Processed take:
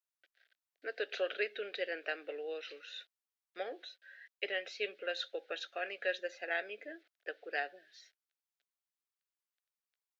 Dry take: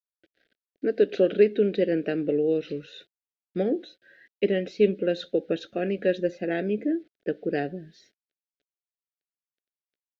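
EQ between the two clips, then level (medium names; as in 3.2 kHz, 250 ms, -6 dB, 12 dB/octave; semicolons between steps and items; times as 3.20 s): ladder high-pass 730 Hz, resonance 25%; +4.5 dB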